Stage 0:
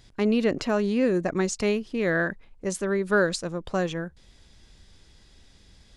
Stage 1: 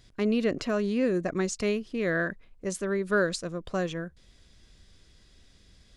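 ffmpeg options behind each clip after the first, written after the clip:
ffmpeg -i in.wav -af "bandreject=frequency=860:width=5.5,volume=-3dB" out.wav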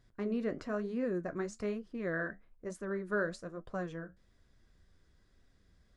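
ffmpeg -i in.wav -af "flanger=delay=7.1:depth=7.3:regen=-62:speed=1.1:shape=triangular,highshelf=frequency=2100:width_type=q:width=1.5:gain=-7.5,volume=-4.5dB" out.wav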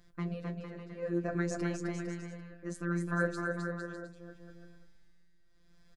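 ffmpeg -i in.wav -af "afftfilt=real='hypot(re,im)*cos(PI*b)':imag='0':win_size=1024:overlap=0.75,tremolo=f=0.67:d=0.96,aecho=1:1:260|455|601.2|710.9|793.2:0.631|0.398|0.251|0.158|0.1,volume=8.5dB" out.wav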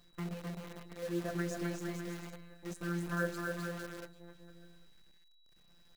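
ffmpeg -i in.wav -af "acrusher=bits=8:dc=4:mix=0:aa=0.000001,aeval=exprs='val(0)+0.000562*sin(2*PI*3900*n/s)':channel_layout=same,volume=-3.5dB" out.wav

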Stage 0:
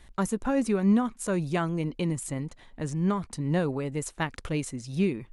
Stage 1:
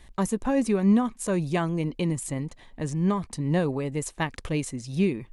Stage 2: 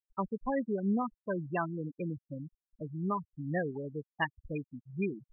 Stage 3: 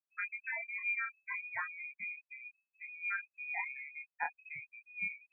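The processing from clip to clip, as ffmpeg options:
ffmpeg -i in.wav -af "bandreject=frequency=1400:width=7.2,volume=2dB" out.wav
ffmpeg -i in.wav -af "afftfilt=real='re*gte(hypot(re,im),0.112)':imag='im*gte(hypot(re,im),0.112)':win_size=1024:overlap=0.75,tiltshelf=frequency=900:gain=-9,volume=-2.5dB" out.wav
ffmpeg -i in.wav -af "flanger=delay=20:depth=5.7:speed=0.6,equalizer=frequency=330:width_type=o:width=1.2:gain=-7,lowpass=frequency=2200:width_type=q:width=0.5098,lowpass=frequency=2200:width_type=q:width=0.6013,lowpass=frequency=2200:width_type=q:width=0.9,lowpass=frequency=2200:width_type=q:width=2.563,afreqshift=-2600,volume=-1dB" out.wav

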